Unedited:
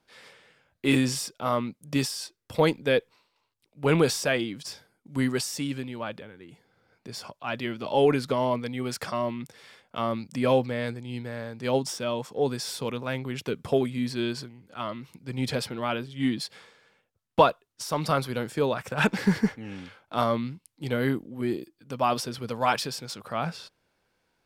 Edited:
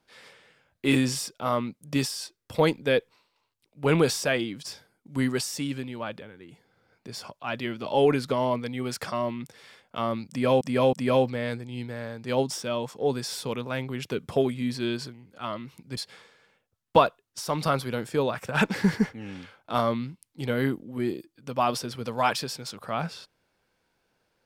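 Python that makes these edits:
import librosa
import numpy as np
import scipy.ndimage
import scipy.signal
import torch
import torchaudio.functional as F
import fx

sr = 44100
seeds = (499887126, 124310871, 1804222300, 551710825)

y = fx.edit(x, sr, fx.repeat(start_s=10.29, length_s=0.32, count=3),
    fx.cut(start_s=15.33, length_s=1.07), tone=tone)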